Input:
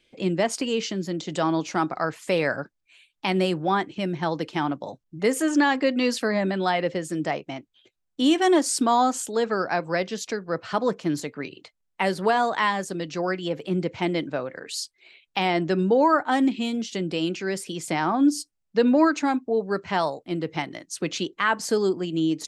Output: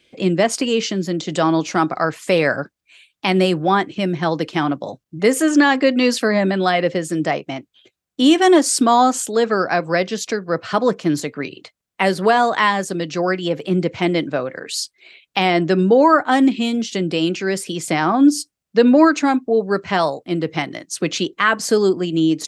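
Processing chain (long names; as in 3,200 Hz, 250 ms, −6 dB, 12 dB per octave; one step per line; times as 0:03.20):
high-pass filter 57 Hz
notch filter 890 Hz, Q 12
level +7 dB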